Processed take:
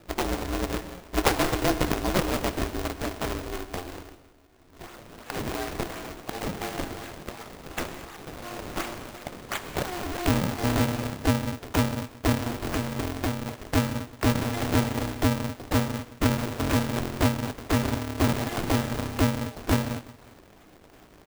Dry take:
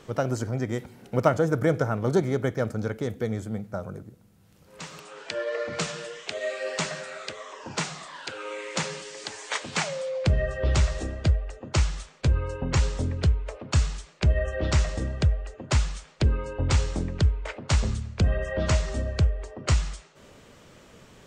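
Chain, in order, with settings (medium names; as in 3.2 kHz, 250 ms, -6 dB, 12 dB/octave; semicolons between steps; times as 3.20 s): 12.33–13.57 s: compression, threshold -23 dBFS, peak gain reduction 7.5 dB; feedback delay 180 ms, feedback 40%, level -19 dB; decimation with a swept rate 40×, swing 160% 2.8 Hz; gated-style reverb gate 270 ms flat, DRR 9 dB; polarity switched at an audio rate 180 Hz; trim -2 dB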